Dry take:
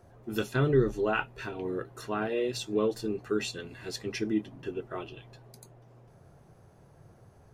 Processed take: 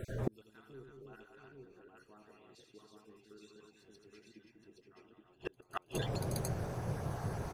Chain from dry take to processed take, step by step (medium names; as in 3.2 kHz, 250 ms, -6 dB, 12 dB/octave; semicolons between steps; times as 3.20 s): random holes in the spectrogram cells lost 35%; in parallel at -2 dB: compression 10:1, threshold -40 dBFS, peak gain reduction 21.5 dB; on the sum: multi-tap echo 82/194/287/323/685/821 ms -6.5/-5.5/-12.5/-4.5/-10/-3.5 dB; inverted gate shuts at -29 dBFS, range -41 dB; trim +11 dB